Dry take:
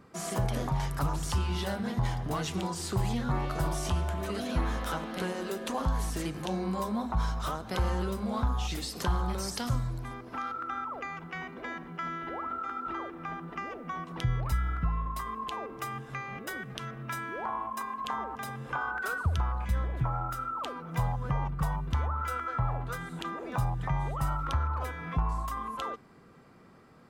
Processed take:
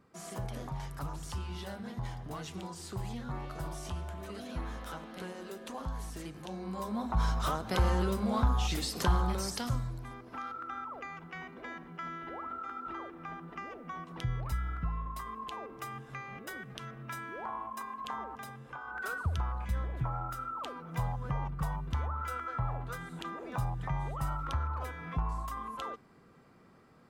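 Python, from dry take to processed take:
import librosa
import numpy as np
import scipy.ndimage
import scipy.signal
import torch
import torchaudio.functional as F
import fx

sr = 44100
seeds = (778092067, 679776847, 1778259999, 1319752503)

y = fx.gain(x, sr, db=fx.line((6.57, -9.0), (7.3, 1.5), (9.14, 1.5), (9.99, -5.0), (18.33, -5.0), (18.83, -12.0), (19.0, -4.0)))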